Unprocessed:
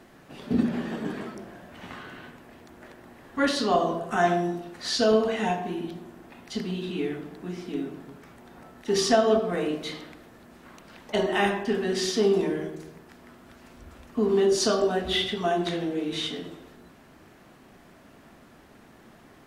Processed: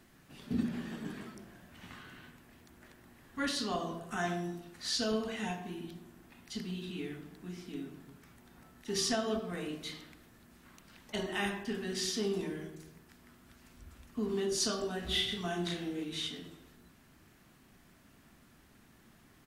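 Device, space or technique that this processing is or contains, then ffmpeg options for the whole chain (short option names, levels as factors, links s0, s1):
smiley-face EQ: -filter_complex "[0:a]asplit=3[s0][s1][s2];[s0]afade=t=out:st=15.01:d=0.02[s3];[s1]asplit=2[s4][s5];[s5]adelay=34,volume=0.708[s6];[s4][s6]amix=inputs=2:normalize=0,afade=t=in:st=15.01:d=0.02,afade=t=out:st=16.03:d=0.02[s7];[s2]afade=t=in:st=16.03:d=0.02[s8];[s3][s7][s8]amix=inputs=3:normalize=0,lowshelf=f=140:g=4,equalizer=f=570:t=o:w=1.8:g=-8,highshelf=f=6700:g=7.5,volume=0.422"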